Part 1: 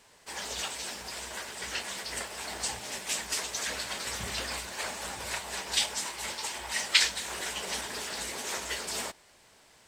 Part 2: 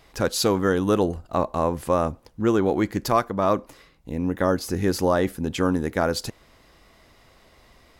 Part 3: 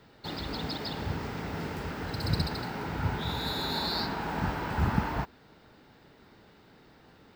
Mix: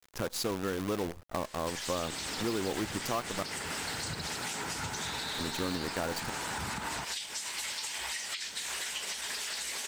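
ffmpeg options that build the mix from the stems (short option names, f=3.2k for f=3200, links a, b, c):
-filter_complex "[0:a]highshelf=f=2.2k:g=12,acompressor=threshold=-33dB:ratio=6,adelay=1400,volume=1.5dB[a];[1:a]lowshelf=f=120:g=-2.5,acrusher=bits=5:dc=4:mix=0:aa=0.000001,volume=-3dB,asplit=3[b][c][d];[b]atrim=end=3.43,asetpts=PTS-STARTPTS,afade=t=out:st=3.426:d=0.004:c=hsin[e];[c]atrim=start=3.43:end=5.33,asetpts=PTS-STARTPTS,volume=0[f];[d]atrim=start=5.33,asetpts=PTS-STARTPTS,afade=t=in:d=0.004:c=hsin[g];[e][f][g]concat=n=3:v=0:a=1[h];[2:a]lowshelf=f=130:g=-8.5,adelay=1800,volume=1dB[i];[a][i]amix=inputs=2:normalize=0,equalizer=f=2k:w=0.48:g=6,alimiter=limit=-21.5dB:level=0:latency=1:release=132,volume=0dB[j];[h][j]amix=inputs=2:normalize=0,acompressor=threshold=-37dB:ratio=2"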